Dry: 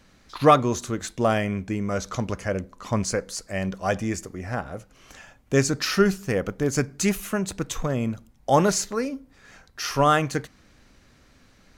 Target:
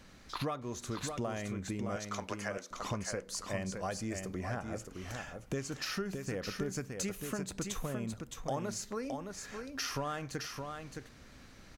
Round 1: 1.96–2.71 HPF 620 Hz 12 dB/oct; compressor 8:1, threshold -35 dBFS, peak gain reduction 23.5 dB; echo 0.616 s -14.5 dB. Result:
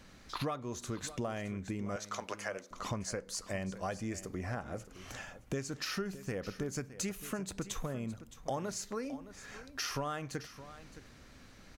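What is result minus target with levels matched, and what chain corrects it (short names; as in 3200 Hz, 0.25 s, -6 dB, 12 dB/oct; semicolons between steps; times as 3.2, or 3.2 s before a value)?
echo-to-direct -9 dB
1.96–2.71 HPF 620 Hz 12 dB/oct; compressor 8:1, threshold -35 dBFS, peak gain reduction 23.5 dB; echo 0.616 s -5.5 dB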